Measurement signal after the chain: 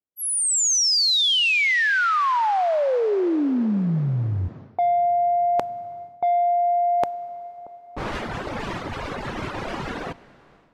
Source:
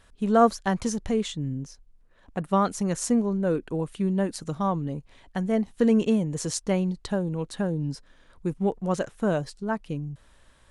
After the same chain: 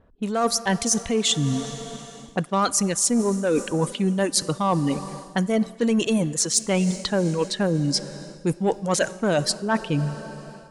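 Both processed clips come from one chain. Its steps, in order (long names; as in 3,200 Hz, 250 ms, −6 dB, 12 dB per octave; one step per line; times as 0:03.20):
low-pass that shuts in the quiet parts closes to 500 Hz, open at −24.5 dBFS
low-shelf EQ 71 Hz −12 dB
reverb reduction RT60 1.8 s
in parallel at −6 dB: soft clipping −24.5 dBFS
on the sum: dense smooth reverb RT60 4.7 s, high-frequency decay 0.85×, DRR 18 dB
automatic gain control gain up to 8 dB
high-shelf EQ 2,500 Hz +11.5 dB
reversed playback
downward compressor 6 to 1, threshold −24 dBFS
reversed playback
level +4.5 dB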